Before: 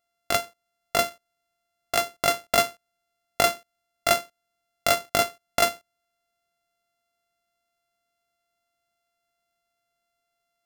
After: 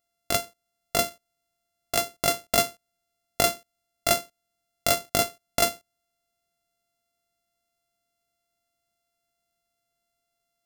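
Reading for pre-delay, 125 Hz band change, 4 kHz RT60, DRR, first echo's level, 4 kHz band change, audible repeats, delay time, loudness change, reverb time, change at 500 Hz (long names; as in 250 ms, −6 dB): no reverb audible, +3.0 dB, no reverb audible, no reverb audible, no echo audible, −0.5 dB, no echo audible, no echo audible, −1.0 dB, no reverb audible, −2.0 dB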